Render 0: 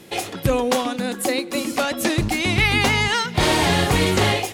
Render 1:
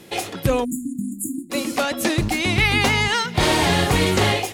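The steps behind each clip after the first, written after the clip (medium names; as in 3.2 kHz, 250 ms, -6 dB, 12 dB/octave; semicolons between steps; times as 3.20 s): spectral selection erased 0.65–1.50 s, 340–6700 Hz; short-mantissa float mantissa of 6-bit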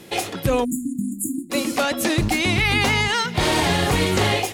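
peak limiter -11.5 dBFS, peak gain reduction 4.5 dB; trim +1.5 dB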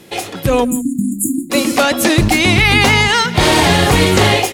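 level rider gain up to 8 dB; echo from a far wall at 29 m, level -20 dB; trim +1.5 dB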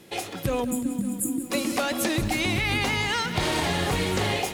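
compression, threshold -13 dBFS, peak gain reduction 6.5 dB; bit-crushed delay 185 ms, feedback 80%, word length 6-bit, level -14 dB; trim -9 dB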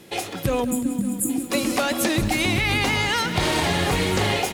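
delay 1177 ms -15 dB; trim +3.5 dB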